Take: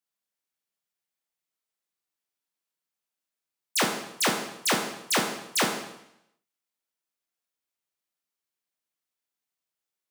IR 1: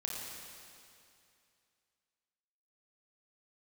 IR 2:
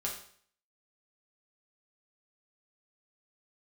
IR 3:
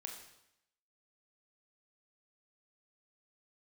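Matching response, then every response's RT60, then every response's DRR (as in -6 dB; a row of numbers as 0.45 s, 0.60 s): 3; 2.5 s, 0.55 s, 0.80 s; -2.5 dB, -3.5 dB, 1.5 dB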